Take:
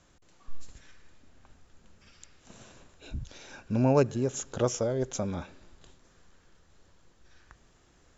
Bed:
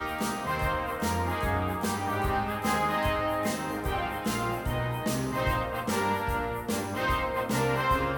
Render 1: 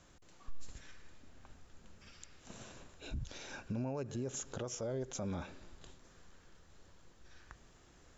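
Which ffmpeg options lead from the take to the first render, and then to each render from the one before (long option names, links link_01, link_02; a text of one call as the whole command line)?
ffmpeg -i in.wav -af "acompressor=threshold=-29dB:ratio=6,alimiter=level_in=7.5dB:limit=-24dB:level=0:latency=1:release=97,volume=-7.5dB" out.wav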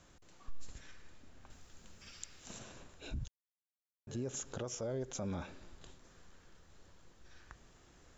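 ffmpeg -i in.wav -filter_complex "[0:a]asettb=1/sr,asplit=3[link_01][link_02][link_03];[link_01]atrim=end=1.504[link_04];[link_02]atrim=start=1.5:end=2.59,asetpts=PTS-STARTPTS,afade=type=in:duration=0.004:curve=qsin,afade=type=out:start_time=1.086:duration=0.004:curve=qsin,highshelf=frequency=2900:gain=8.5[link_05];[link_03]atrim=start=2.586[link_06];[link_04][link_05]acrossfade=duration=0.004:curve1=hsin:curve2=qsin[link_07];[link_07][link_06]acrossfade=duration=0.004:curve1=qsin:curve2=hsin,asplit=3[link_08][link_09][link_10];[link_08]atrim=end=3.28,asetpts=PTS-STARTPTS,afade=type=out:start_time=3.276:duration=0.004:curve=hsin[link_11];[link_09]atrim=start=3.28:end=4.07,asetpts=PTS-STARTPTS,volume=0[link_12];[link_10]atrim=start=4.07,asetpts=PTS-STARTPTS,afade=type=in:duration=0.004:curve=hsin[link_13];[link_11][link_12][link_13]concat=n=3:v=0:a=1" out.wav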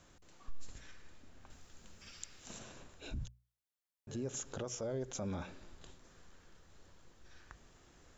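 ffmpeg -i in.wav -af "bandreject=frequency=60:width_type=h:width=6,bandreject=frequency=120:width_type=h:width=6,bandreject=frequency=180:width_type=h:width=6" out.wav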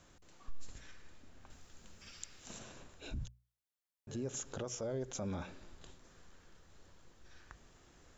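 ffmpeg -i in.wav -af anull out.wav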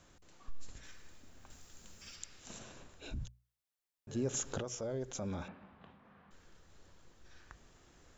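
ffmpeg -i in.wav -filter_complex "[0:a]asettb=1/sr,asplit=3[link_01][link_02][link_03];[link_01]atrim=end=0.834[link_04];[link_02]atrim=start=0.83:end=2.16,asetpts=PTS-STARTPTS,afade=type=in:duration=0.004:curve=qsin,afade=type=out:start_time=1.326:duration=0.004:curve=qsin,highshelf=frequency=6700:gain=11[link_05];[link_03]atrim=start=2.156[link_06];[link_04][link_05]acrossfade=duration=0.004:curve1=hsin:curve2=qsin[link_07];[link_07][link_06]acrossfade=duration=0.004:curve1=qsin:curve2=hsin,asplit=3[link_08][link_09][link_10];[link_08]afade=type=out:start_time=4.15:duration=0.02[link_11];[link_09]acontrast=27,afade=type=in:start_time=4.15:duration=0.02,afade=type=out:start_time=4.59:duration=0.02[link_12];[link_10]afade=type=in:start_time=4.59:duration=0.02[link_13];[link_11][link_12][link_13]amix=inputs=3:normalize=0,asettb=1/sr,asplit=3[link_14][link_15][link_16];[link_14]atrim=end=5.484[link_17];[link_15]atrim=start=5.48:end=6.31,asetpts=PTS-STARTPTS,afade=type=in:duration=0.004:curve=qsin,afade=type=out:start_time=0.826:duration=0.004:curve=qsin,highpass=100,equalizer=frequency=200:width_type=q:width=4:gain=10,equalizer=frequency=350:width_type=q:width=4:gain=-7,equalizer=frequency=770:width_type=q:width=4:gain=6,equalizer=frequency=1100:width_type=q:width=4:gain=6,lowpass=frequency=2700:width=0.5412,lowpass=frequency=2700:width=1.3066[link_18];[link_16]atrim=start=6.306[link_19];[link_17][link_18]acrossfade=duration=0.004:curve1=hsin:curve2=qsin[link_20];[link_20][link_19]acrossfade=duration=0.004:curve1=qsin:curve2=hsin" out.wav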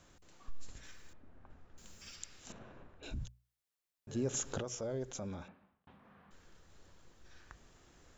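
ffmpeg -i in.wav -filter_complex "[0:a]asettb=1/sr,asplit=3[link_01][link_02][link_03];[link_01]atrim=end=1.134[link_04];[link_02]atrim=start=1.13:end=1.78,asetpts=PTS-STARTPTS,afade=type=in:duration=0.004:curve=qsin,afade=type=out:start_time=0.646:duration=0.004:curve=qsin,lowpass=1400[link_05];[link_03]atrim=start=1.776[link_06];[link_04][link_05]acrossfade=duration=0.004:curve1=hsin:curve2=qsin[link_07];[link_07][link_06]acrossfade=duration=0.004:curve1=qsin:curve2=hsin,asettb=1/sr,asplit=3[link_08][link_09][link_10];[link_08]atrim=end=2.524[link_11];[link_09]atrim=start=2.52:end=3.03,asetpts=PTS-STARTPTS,afade=type=in:duration=0.004:curve=qsin,afade=type=out:start_time=0.506:duration=0.004:curve=qsin,lowpass=1700[link_12];[link_10]atrim=start=3.026[link_13];[link_11][link_12]acrossfade=duration=0.004:curve1=hsin:curve2=qsin[link_14];[link_14][link_13]acrossfade=duration=0.004:curve1=qsin:curve2=hsin,asplit=2[link_15][link_16];[link_15]atrim=end=5.87,asetpts=PTS-STARTPTS,afade=type=out:start_time=5.02:duration=0.85[link_17];[link_16]atrim=start=5.87,asetpts=PTS-STARTPTS,afade=type=in:duration=0.004:curve=hsin[link_18];[link_17][link_18]concat=n=2:v=0:a=1" out.wav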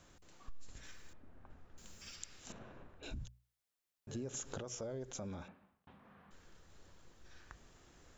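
ffmpeg -i in.wav -af "acompressor=threshold=-40dB:ratio=5" out.wav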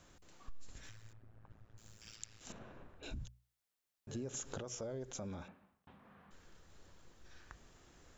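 ffmpeg -i in.wav -filter_complex "[0:a]asettb=1/sr,asplit=3[link_01][link_02][link_03];[link_01]atrim=end=0.894[link_04];[link_02]atrim=start=0.89:end=2.41,asetpts=PTS-STARTPTS,afade=type=in:duration=0.004:curve=qsin,afade=type=out:start_time=1.516:duration=0.004:curve=qsin,tremolo=f=110:d=0.974[link_05];[link_03]atrim=start=2.406[link_06];[link_04][link_05]acrossfade=duration=0.004:curve1=hsin:curve2=qsin[link_07];[link_07][link_06]acrossfade=duration=0.004:curve1=qsin:curve2=hsin" out.wav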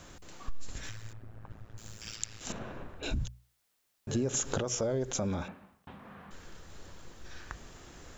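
ffmpeg -i in.wav -af "volume=12dB" out.wav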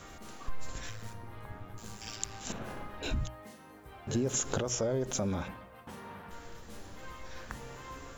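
ffmpeg -i in.wav -i bed.wav -filter_complex "[1:a]volume=-21dB[link_01];[0:a][link_01]amix=inputs=2:normalize=0" out.wav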